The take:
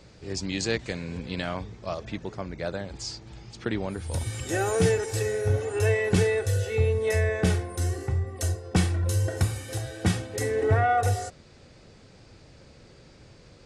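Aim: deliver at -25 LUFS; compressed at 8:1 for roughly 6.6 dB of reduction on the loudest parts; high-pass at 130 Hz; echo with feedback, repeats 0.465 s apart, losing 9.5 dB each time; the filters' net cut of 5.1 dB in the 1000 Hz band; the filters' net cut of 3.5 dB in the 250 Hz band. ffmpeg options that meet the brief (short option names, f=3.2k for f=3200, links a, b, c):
-af "highpass=130,equalizer=f=250:t=o:g=-4,equalizer=f=1k:t=o:g=-8.5,acompressor=threshold=-28dB:ratio=8,aecho=1:1:465|930|1395|1860:0.335|0.111|0.0365|0.012,volume=9dB"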